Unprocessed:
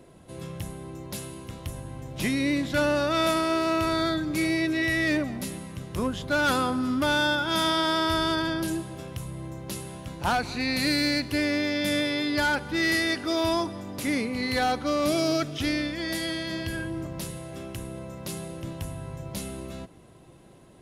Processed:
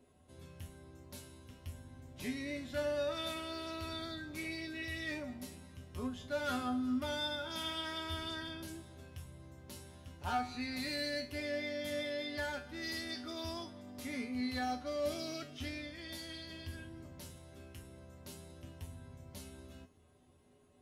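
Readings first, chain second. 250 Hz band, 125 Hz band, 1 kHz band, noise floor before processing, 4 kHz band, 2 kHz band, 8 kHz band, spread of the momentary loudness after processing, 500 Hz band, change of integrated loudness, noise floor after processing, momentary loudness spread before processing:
-14.5 dB, -14.0 dB, -14.0 dB, -52 dBFS, -12.5 dB, -15.0 dB, -14.5 dB, 16 LU, -12.0 dB, -13.0 dB, -65 dBFS, 14 LU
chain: resonator 83 Hz, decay 0.3 s, harmonics odd, mix 90%; gain -3 dB

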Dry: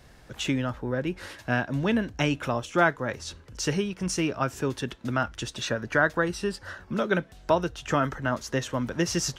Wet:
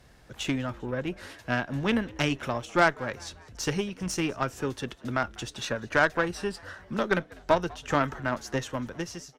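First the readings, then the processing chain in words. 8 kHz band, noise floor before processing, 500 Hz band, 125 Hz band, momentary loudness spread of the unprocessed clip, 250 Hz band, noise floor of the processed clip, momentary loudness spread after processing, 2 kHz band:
-4.5 dB, -52 dBFS, -1.5 dB, -3.5 dB, 9 LU, -2.5 dB, -55 dBFS, 11 LU, -0.5 dB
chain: ending faded out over 0.69 s; added harmonics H 4 -18 dB, 7 -27 dB, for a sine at -9 dBFS; frequency-shifting echo 0.197 s, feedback 55%, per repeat +86 Hz, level -24 dB

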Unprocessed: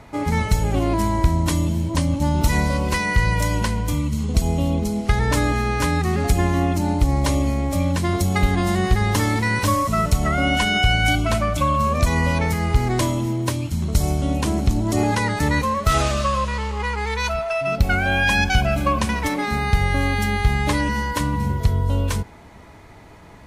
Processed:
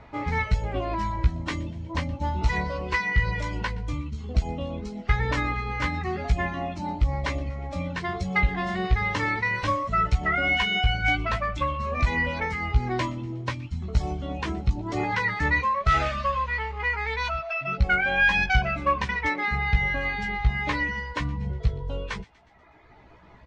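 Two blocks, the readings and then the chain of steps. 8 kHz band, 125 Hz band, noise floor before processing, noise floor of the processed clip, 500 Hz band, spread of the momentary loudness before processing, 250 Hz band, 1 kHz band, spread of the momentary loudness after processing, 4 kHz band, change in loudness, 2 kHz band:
-18.0 dB, -8.5 dB, -43 dBFS, -51 dBFS, -8.0 dB, 4 LU, -11.0 dB, -4.5 dB, 9 LU, -6.5 dB, -5.5 dB, -1.0 dB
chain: reverb removal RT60 1.4 s; Gaussian blur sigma 1.9 samples; bell 230 Hz -4.5 dB 2.4 oct; in parallel at -9 dB: hard clip -17 dBFS, distortion -11 dB; on the sum: dynamic EQ 2000 Hz, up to +7 dB, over -39 dBFS, Q 2.2; doubler 16 ms -4 dB; on a send: thin delay 0.121 s, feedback 56%, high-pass 2000 Hz, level -21 dB; on the sum: gain -6 dB

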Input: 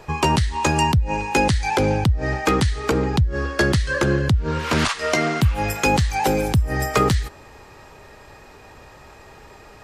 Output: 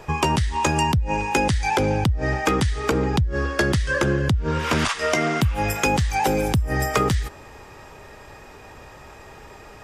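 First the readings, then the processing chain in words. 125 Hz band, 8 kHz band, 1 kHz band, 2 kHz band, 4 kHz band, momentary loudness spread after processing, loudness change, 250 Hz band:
-2.0 dB, -1.0 dB, -1.0 dB, -1.0 dB, -2.0 dB, 2 LU, -1.5 dB, -1.5 dB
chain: notch 4200 Hz, Q 11; compressor 3:1, threshold -19 dBFS, peak gain reduction 5.5 dB; gain +1.5 dB

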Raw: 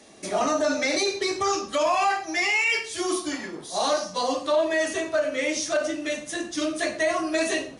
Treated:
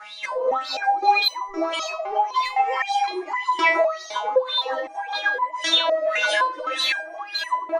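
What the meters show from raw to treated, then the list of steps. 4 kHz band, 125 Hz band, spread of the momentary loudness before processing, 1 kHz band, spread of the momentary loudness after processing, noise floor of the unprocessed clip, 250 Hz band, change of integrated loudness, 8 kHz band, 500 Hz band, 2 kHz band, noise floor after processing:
+6.5 dB, n/a, 7 LU, +6.5 dB, 9 LU, -41 dBFS, -8.5 dB, +2.5 dB, -8.0 dB, -0.5 dB, +2.5 dB, -39 dBFS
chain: wah 1.8 Hz 390–4000 Hz, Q 13; notches 50/100/150/200/250/300/350/400 Hz; reverse; upward compressor, threshold -51 dBFS; reverse; low shelf 280 Hz -6.5 dB; notch 730 Hz, Q 14; on a send: split-band echo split 1600 Hz, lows 0.412 s, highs 0.6 s, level -12 dB; on the sum: soft clip -31 dBFS, distortion -15 dB; bell 950 Hz +13.5 dB 0.74 oct; comb 6.1 ms, depth 96%; compressor 12:1, threshold -39 dBFS, peak gain reduction 22 dB; maximiser +34.5 dB; stepped resonator 3.9 Hz 210–1000 Hz; gain +3.5 dB

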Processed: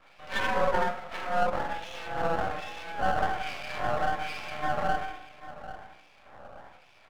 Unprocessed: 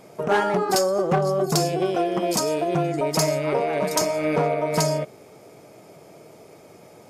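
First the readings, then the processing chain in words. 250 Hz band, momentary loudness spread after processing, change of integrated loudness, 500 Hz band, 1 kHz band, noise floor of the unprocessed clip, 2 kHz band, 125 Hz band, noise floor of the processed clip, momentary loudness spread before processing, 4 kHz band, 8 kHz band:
-14.5 dB, 17 LU, -8.0 dB, -11.5 dB, -3.0 dB, -49 dBFS, -0.5 dB, -14.0 dB, -57 dBFS, 2 LU, -9.5 dB, -23.0 dB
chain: in parallel at +2 dB: compressor, threshold -30 dBFS, peak gain reduction 13 dB; on the sum: LFO band-pass sine 1.2 Hz 510–2900 Hz; mistuned SSB +140 Hz 200–3600 Hz; doubler 48 ms -8.5 dB; on a send: echo 0.791 s -15 dB; on the sum: shoebox room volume 900 m³, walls furnished, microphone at 5.8 m; half-wave rectifier; gain -6.5 dB

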